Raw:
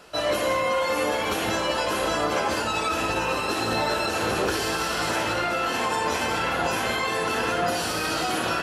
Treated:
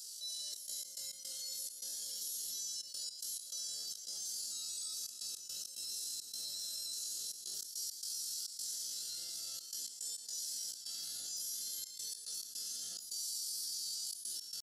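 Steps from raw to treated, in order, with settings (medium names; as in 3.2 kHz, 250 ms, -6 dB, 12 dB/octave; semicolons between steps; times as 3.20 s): inverse Chebyshev high-pass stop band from 2.6 kHz, stop band 40 dB; reverberation RT60 1.1 s, pre-delay 5 ms, DRR 0.5 dB; trance gate "xxxx.x.x.xxx.xxx" 180 bpm -24 dB; tempo 0.59×; level flattener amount 70%; trim -7.5 dB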